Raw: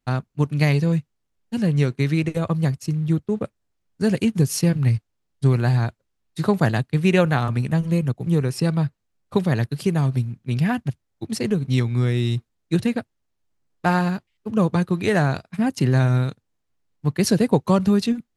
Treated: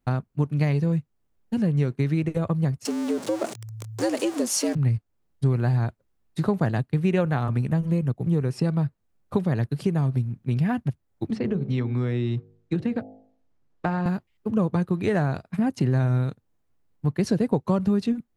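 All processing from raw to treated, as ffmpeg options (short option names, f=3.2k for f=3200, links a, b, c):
-filter_complex "[0:a]asettb=1/sr,asplit=3[a][b][c];[a]atrim=end=2.854[d];[b]atrim=start=2.85:end=4.75,asetpts=PTS-STARTPTS,afade=t=in:d=0.004:c=qsin,afade=t=out:st=1.896:d=0.004:c=qsin,aeval=exprs='val(0)+0.5*0.0501*sgn(val(0))':c=same,bass=f=250:g=-10,treble=f=4k:g=11,afreqshift=110[e];[c]atrim=start=4.746[f];[d][e]acrossfade=d=0.004:c1=hsin:c2=qsin[g];[g][f]acrossfade=d=0.004:c1=qsin:c2=hsin,asettb=1/sr,asplit=3[h][i][j];[h]atrim=end=11.304[k];[i]atrim=start=11.3:end=14.06,asetpts=PTS-STARTPTS,afade=t=in:d=0.004:c=qsin,afade=t=out:st=2.756:d=0.004:c=qsin,lowpass=6.2k,bandreject=f=52.31:t=h:w=4,bandreject=f=104.62:t=h:w=4,bandreject=f=156.93:t=h:w=4,bandreject=f=209.24:t=h:w=4,bandreject=f=261.55:t=h:w=4,bandreject=f=313.86:t=h:w=4,bandreject=f=366.17:t=h:w=4,bandreject=f=418.48:t=h:w=4,bandreject=f=470.79:t=h:w=4,bandreject=f=523.1:t=h:w=4,bandreject=f=575.41:t=h:w=4,bandreject=f=627.72:t=h:w=4,bandreject=f=680.03:t=h:w=4,bandreject=f=732.34:t=h:w=4,bandreject=f=784.65:t=h:w=4,bandreject=f=836.96:t=h:w=4,acrossover=split=170|4100[l][m][n];[l]acompressor=threshold=-30dB:ratio=4[o];[m]acompressor=threshold=-23dB:ratio=4[p];[n]acompressor=threshold=-54dB:ratio=4[q];[o][p][q]amix=inputs=3:normalize=0[r];[j]atrim=start=14.056[s];[k][r]acrossfade=d=0.004:c1=hsin:c2=qsin[t];[t][s]acrossfade=d=0.004:c1=qsin:c2=hsin,acrossover=split=9000[u][v];[v]acompressor=threshold=-57dB:ratio=4:attack=1:release=60[w];[u][w]amix=inputs=2:normalize=0,equalizer=f=5.1k:w=0.35:g=-8.5,acompressor=threshold=-31dB:ratio=2,volume=5dB"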